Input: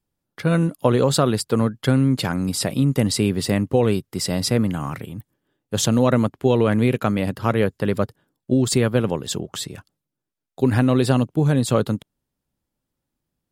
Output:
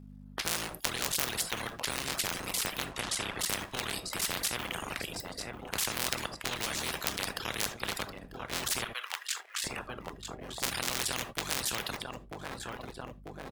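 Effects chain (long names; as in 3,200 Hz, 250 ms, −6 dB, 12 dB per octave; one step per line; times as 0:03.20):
sub-harmonics by changed cycles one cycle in 3, muted
high-shelf EQ 3,600 Hz −8 dB
repeating echo 943 ms, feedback 46%, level −21 dB
mains hum 50 Hz, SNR 32 dB
0:02.86–0:03.40: high-frequency loss of the air 52 metres
0:06.62–0:07.11: double-tracking delay 13 ms −3.5 dB
0:08.84–0:09.64: four-pole ladder high-pass 1,300 Hz, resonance 30%
reverb whose tail is shaped and stops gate 100 ms flat, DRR 7.5 dB
reverb reduction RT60 0.57 s
every bin compressed towards the loudest bin 10 to 1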